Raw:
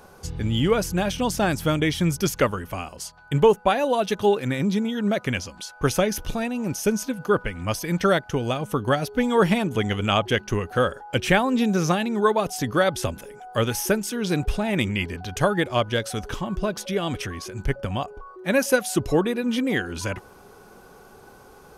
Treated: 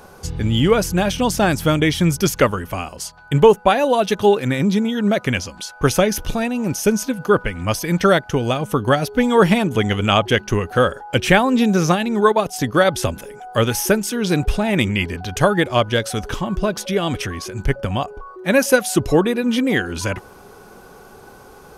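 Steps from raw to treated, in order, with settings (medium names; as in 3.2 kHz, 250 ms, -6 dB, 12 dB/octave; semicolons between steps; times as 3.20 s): 11.81–12.85 s: transient shaper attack 0 dB, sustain -6 dB; trim +5.5 dB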